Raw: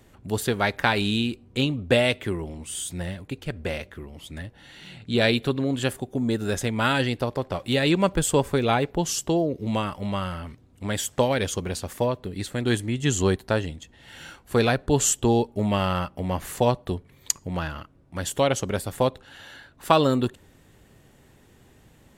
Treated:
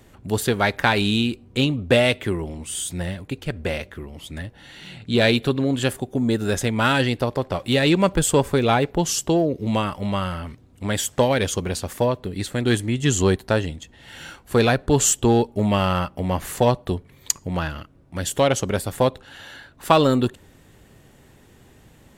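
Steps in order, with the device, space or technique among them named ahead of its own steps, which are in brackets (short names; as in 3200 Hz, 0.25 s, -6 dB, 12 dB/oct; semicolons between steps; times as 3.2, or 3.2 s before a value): 17.68–18.33 dynamic EQ 1000 Hz, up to -6 dB, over -48 dBFS, Q 1.4; parallel distortion (in parallel at -8.5 dB: hard clip -17.5 dBFS, distortion -12 dB); on the sum: gain +1 dB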